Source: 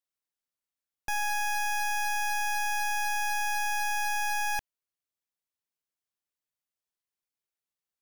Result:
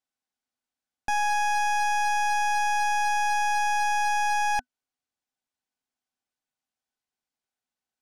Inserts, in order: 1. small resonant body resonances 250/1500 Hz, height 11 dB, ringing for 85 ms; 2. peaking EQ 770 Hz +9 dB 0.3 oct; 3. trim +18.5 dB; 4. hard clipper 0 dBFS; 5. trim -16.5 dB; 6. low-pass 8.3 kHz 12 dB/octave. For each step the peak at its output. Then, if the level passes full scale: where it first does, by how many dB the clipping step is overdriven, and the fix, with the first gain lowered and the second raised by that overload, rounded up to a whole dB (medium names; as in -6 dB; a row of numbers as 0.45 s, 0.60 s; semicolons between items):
-25.5 dBFS, -21.0 dBFS, -2.5 dBFS, -2.5 dBFS, -19.0 dBFS, -19.5 dBFS; nothing clips